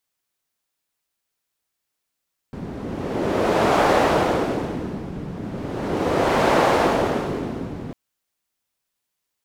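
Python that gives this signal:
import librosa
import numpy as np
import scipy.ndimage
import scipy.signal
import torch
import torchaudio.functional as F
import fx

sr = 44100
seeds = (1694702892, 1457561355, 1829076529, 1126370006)

y = fx.wind(sr, seeds[0], length_s=5.4, low_hz=200.0, high_hz=650.0, q=1.1, gusts=2, swing_db=14.5)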